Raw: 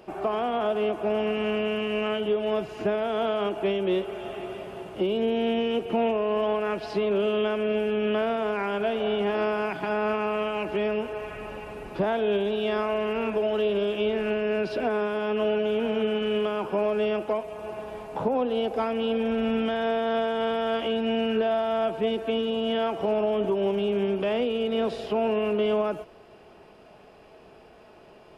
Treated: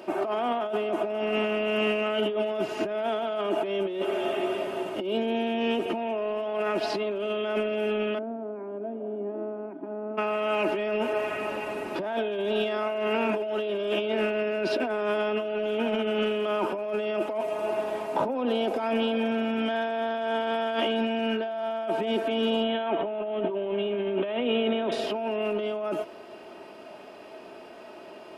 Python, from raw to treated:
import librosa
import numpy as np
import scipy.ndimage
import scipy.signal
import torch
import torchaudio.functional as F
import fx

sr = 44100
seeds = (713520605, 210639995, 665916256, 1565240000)

y = fx.ladder_bandpass(x, sr, hz=300.0, resonance_pct=55, at=(8.17, 10.17), fade=0.02)
y = fx.resample_bad(y, sr, factor=6, down='none', up='filtered', at=(22.63, 24.92))
y = scipy.signal.sosfilt(scipy.signal.butter(2, 190.0, 'highpass', fs=sr, output='sos'), y)
y = y + 0.43 * np.pad(y, (int(3.2 * sr / 1000.0), 0))[:len(y)]
y = fx.over_compress(y, sr, threshold_db=-30.0, ratio=-1.0)
y = F.gain(torch.from_numpy(y), 2.5).numpy()